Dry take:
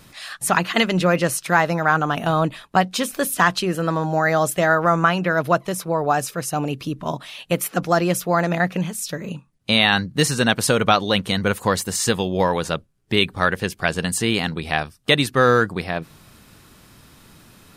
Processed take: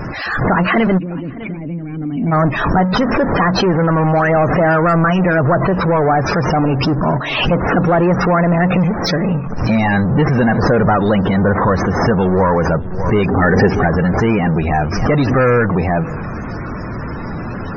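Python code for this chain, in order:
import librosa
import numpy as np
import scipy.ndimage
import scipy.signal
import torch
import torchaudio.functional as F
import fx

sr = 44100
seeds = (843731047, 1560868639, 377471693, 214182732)

p1 = fx.cvsd(x, sr, bps=32000)
p2 = np.sign(p1) * np.maximum(np.abs(p1) - 10.0 ** (-42.0 / 20.0), 0.0)
p3 = p1 + (p2 * librosa.db_to_amplitude(-10.5))
p4 = fx.power_curve(p3, sr, exponent=0.35)
p5 = fx.peak_eq(p4, sr, hz=3500.0, db=-10.5, octaves=1.2)
p6 = fx.spec_topn(p5, sr, count=64)
p7 = fx.formant_cascade(p6, sr, vowel='i', at=(0.97, 2.31), fade=0.02)
p8 = fx.small_body(p7, sr, hz=(260.0, 410.0, 780.0, 1800.0), ring_ms=45, db=9, at=(13.29, 13.87))
p9 = p8 + fx.echo_single(p8, sr, ms=602, db=-22.0, dry=0)
p10 = fx.pre_swell(p9, sr, db_per_s=41.0)
y = p10 * librosa.db_to_amplitude(-2.5)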